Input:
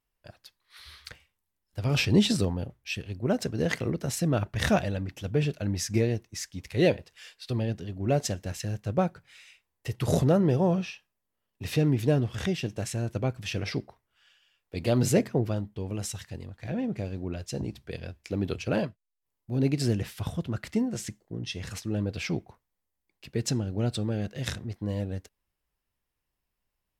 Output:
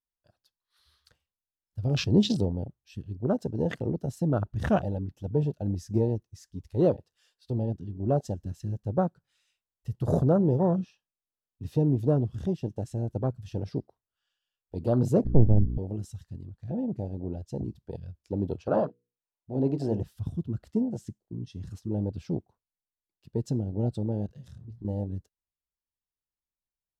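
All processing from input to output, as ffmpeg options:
ffmpeg -i in.wav -filter_complex "[0:a]asettb=1/sr,asplit=3[link_01][link_02][link_03];[link_01]atrim=end=15.254[link_04];[link_02]atrim=start=15.25:end=15.78,asetpts=PTS-STARTPTS,afade=type=in:duration=0.004:curve=qsin,afade=type=out:start_time=0.526:duration=0.004:curve=qsin,aeval=exprs='if(lt(val(0),0),0.251*val(0),val(0))':channel_layout=same,aemphasis=mode=reproduction:type=riaa,aeval=exprs='val(0)+0.0355*(sin(2*PI*60*n/s)+sin(2*PI*2*60*n/s)/2+sin(2*PI*3*60*n/s)/3+sin(2*PI*4*60*n/s)/4+sin(2*PI*5*60*n/s)/5)':channel_layout=same[link_05];[link_03]atrim=start=15.776[link_06];[link_04][link_05]acrossfade=duration=0.004:curve1=hsin:curve2=qsin[link_07];[link_07][link_06]acrossfade=duration=0.004:curve1=qsin:curve2=hsin,asettb=1/sr,asplit=3[link_08][link_09][link_10];[link_08]atrim=end=18.564[link_11];[link_09]atrim=start=18.56:end=20,asetpts=PTS-STARTPTS,afade=type=in:duration=0.004:curve=qsin,afade=type=out:start_time=1.436:duration=0.004:curve=qsin,equalizer=frequency=780:width_type=o:width=0.96:gain=3.5,bandreject=frequency=60:width_type=h:width=6,bandreject=frequency=120:width_type=h:width=6,bandreject=frequency=180:width_type=h:width=6,bandreject=frequency=240:width_type=h:width=6,bandreject=frequency=300:width_type=h:width=6,bandreject=frequency=360:width_type=h:width=6,bandreject=frequency=420:width_type=h:width=6,bandreject=frequency=480:width_type=h:width=6,asplit=2[link_12][link_13];[link_13]highpass=frequency=720:poles=1,volume=13dB,asoftclip=type=tanh:threshold=-12.5dB[link_14];[link_12][link_14]amix=inputs=2:normalize=0,lowpass=frequency=2300:poles=1,volume=-6dB[link_15];[link_10]atrim=start=19.996[link_16];[link_11][link_15]acrossfade=duration=0.004:curve1=hsin:curve2=qsin[link_17];[link_17][link_16]acrossfade=duration=0.004:curve1=qsin:curve2=hsin,asettb=1/sr,asplit=3[link_18][link_19][link_20];[link_18]atrim=end=24.264[link_21];[link_19]atrim=start=24.26:end=24.85,asetpts=PTS-STARTPTS,afade=type=in:duration=0.004:curve=qsin,afade=type=out:start_time=0.586:duration=0.004:curve=qsin,bandreject=frequency=60:width_type=h:width=6,bandreject=frequency=120:width_type=h:width=6,bandreject=frequency=180:width_type=h:width=6,acompressor=threshold=-38dB:ratio=12:attack=3.2:release=140:knee=1:detection=peak,asplit=2[link_22][link_23];[link_23]adelay=26,volume=-8dB[link_24];[link_22][link_24]amix=inputs=2:normalize=0,atrim=end_sample=26019[link_25];[link_20]atrim=start=24.846[link_26];[link_21][link_25]acrossfade=duration=0.004:curve1=hsin:curve2=qsin[link_27];[link_27][link_26]acrossfade=duration=0.004:curve1=qsin:curve2=hsin,afwtdn=0.0316,equalizer=frequency=2200:width_type=o:width=0.53:gain=-12.5" out.wav

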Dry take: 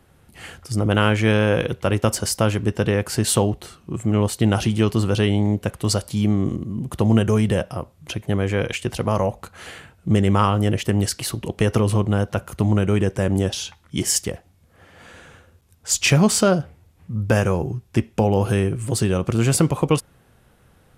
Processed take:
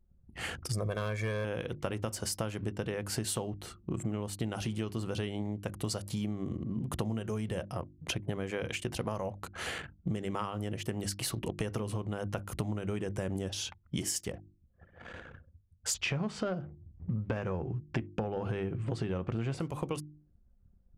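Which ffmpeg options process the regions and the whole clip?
ffmpeg -i in.wav -filter_complex "[0:a]asettb=1/sr,asplit=3[link_01][link_02][link_03];[link_01]atrim=end=0.734[link_04];[link_02]atrim=start=0.73:end=1.45,asetpts=PTS-STARTPTS,afade=type=in:duration=0.004:curve=qsin,afade=type=out:start_time=0.716:duration=0.004:curve=qsin,asuperstop=centerf=2900:order=4:qfactor=5.2,volume=10.5dB,asoftclip=hard,volume=-10.5dB,aecho=1:1:1.8:0.72,atrim=end_sample=31752[link_05];[link_03]atrim=start=1.446[link_06];[link_04][link_05]acrossfade=duration=0.004:curve1=hsin:curve2=qsin[link_07];[link_07][link_06]acrossfade=duration=0.004:curve1=qsin:curve2=hsin,asettb=1/sr,asplit=3[link_08][link_09][link_10];[link_08]atrim=end=15.944[link_11];[link_09]atrim=start=15.94:end=19.6,asetpts=PTS-STARTPTS,afade=type=in:duration=0.004:curve=qsin,afade=type=out:start_time=3.656:duration=0.004:curve=qsin,lowpass=2900,acontrast=56[link_12];[link_10]atrim=start=19.596[link_13];[link_11][link_12]acrossfade=duration=0.004:curve1=hsin:curve2=qsin[link_14];[link_14][link_13]acrossfade=duration=0.004:curve1=qsin:curve2=hsin,anlmdn=0.158,bandreject=frequency=50:width_type=h:width=6,bandreject=frequency=100:width_type=h:width=6,bandreject=frequency=150:width_type=h:width=6,bandreject=frequency=200:width_type=h:width=6,bandreject=frequency=250:width_type=h:width=6,bandreject=frequency=300:width_type=h:width=6,bandreject=frequency=350:width_type=h:width=6,acompressor=threshold=-32dB:ratio=12,volume=1dB" out.wav

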